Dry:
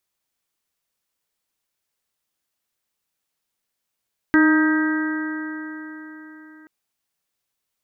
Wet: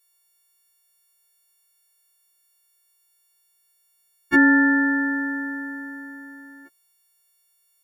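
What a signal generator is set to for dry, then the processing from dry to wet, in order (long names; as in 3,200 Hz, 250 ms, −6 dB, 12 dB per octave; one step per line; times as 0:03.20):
stiff-string partials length 2.33 s, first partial 309 Hz, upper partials −20/−15.5/−13/−6/−11 dB, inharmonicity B 0.0021, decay 4.18 s, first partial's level −12 dB
every partial snapped to a pitch grid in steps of 4 semitones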